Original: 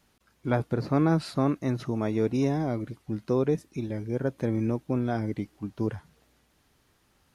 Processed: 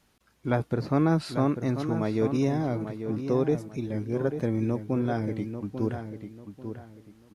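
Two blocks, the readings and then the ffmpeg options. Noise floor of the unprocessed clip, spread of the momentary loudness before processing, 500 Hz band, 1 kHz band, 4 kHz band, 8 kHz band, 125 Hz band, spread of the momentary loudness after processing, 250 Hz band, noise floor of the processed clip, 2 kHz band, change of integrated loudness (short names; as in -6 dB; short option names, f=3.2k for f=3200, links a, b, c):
-68 dBFS, 9 LU, +0.5 dB, +0.5 dB, 0.0 dB, n/a, +0.5 dB, 15 LU, +0.5 dB, -66 dBFS, +0.5 dB, +0.5 dB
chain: -filter_complex "[0:a]asplit=2[a][b];[b]adelay=842,lowpass=f=2.9k:p=1,volume=-8.5dB,asplit=2[c][d];[d]adelay=842,lowpass=f=2.9k:p=1,volume=0.29,asplit=2[e][f];[f]adelay=842,lowpass=f=2.9k:p=1,volume=0.29[g];[c][e][g]amix=inputs=3:normalize=0[h];[a][h]amix=inputs=2:normalize=0,aresample=32000,aresample=44100"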